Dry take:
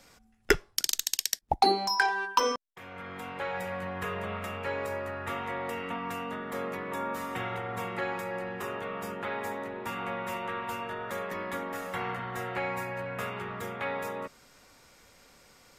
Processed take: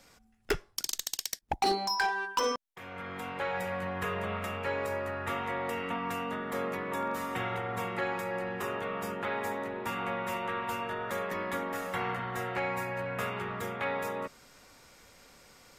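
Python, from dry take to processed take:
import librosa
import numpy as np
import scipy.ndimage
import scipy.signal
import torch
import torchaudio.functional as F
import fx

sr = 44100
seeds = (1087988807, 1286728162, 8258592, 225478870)

p1 = fx.rider(x, sr, range_db=3, speed_s=0.5)
p2 = x + (p1 * 10.0 ** (0.0 / 20.0))
p3 = np.clip(p2, -10.0 ** (-16.0 / 20.0), 10.0 ** (-16.0 / 20.0))
y = p3 * 10.0 ** (-6.5 / 20.0)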